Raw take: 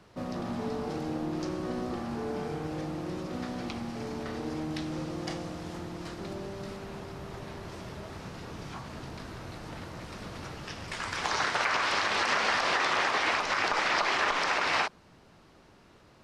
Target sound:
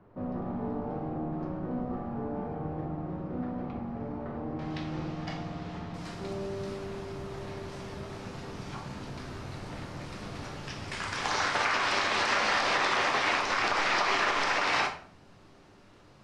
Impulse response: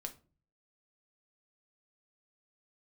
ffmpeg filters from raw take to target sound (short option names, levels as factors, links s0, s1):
-filter_complex "[0:a]asetnsamples=n=441:p=0,asendcmd='4.59 lowpass f 3800;5.94 lowpass f 11000',lowpass=1100[s0];[1:a]atrim=start_sample=2205,asetrate=24696,aresample=44100[s1];[s0][s1]afir=irnorm=-1:irlink=0"